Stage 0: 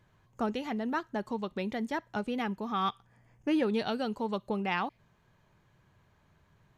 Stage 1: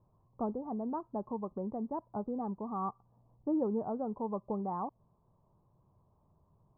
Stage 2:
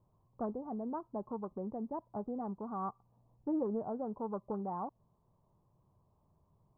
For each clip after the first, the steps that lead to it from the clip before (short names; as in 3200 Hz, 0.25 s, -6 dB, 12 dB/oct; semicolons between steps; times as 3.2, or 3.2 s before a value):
Chebyshev low-pass 1100 Hz, order 5; gain -2.5 dB
Doppler distortion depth 0.16 ms; gain -2.5 dB